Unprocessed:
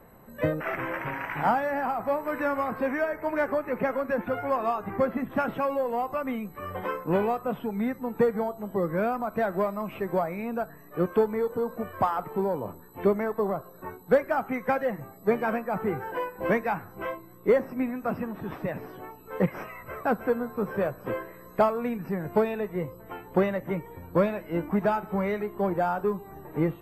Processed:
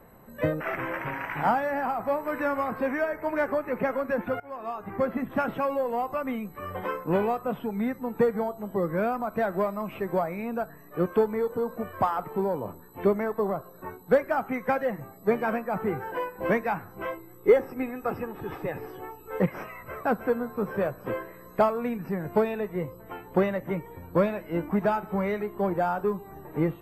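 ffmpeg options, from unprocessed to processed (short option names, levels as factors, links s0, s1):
-filter_complex "[0:a]asettb=1/sr,asplit=3[s0][s1][s2];[s0]atrim=end=17.124[s3];[s1]atrim=start=17.12:end=19.4,asetpts=PTS-STARTPTS,afade=t=in:d=0.004:c=qsin,afade=t=out:st=2.276:d=0.004:c=qsin,aecho=1:1:2.4:0.55,atrim=end_sample=100548[s4];[s2]atrim=start=19.396[s5];[s3][s4]acrossfade=d=0.004:c1=hsin:c2=qsin[s6];[s6][s5]acrossfade=d=0.004:c1=qsin:c2=hsin,asplit=2[s7][s8];[s7]atrim=end=4.4,asetpts=PTS-STARTPTS,afade=t=out:st=4.396:d=0.004:c=hsin:silence=0.0944061[s9];[s8]atrim=start=4.4,asetpts=PTS-STARTPTS,afade=t=in:d=0.75:silence=0.0944061[s10];[s9][s10]concat=n=2:v=0:a=1"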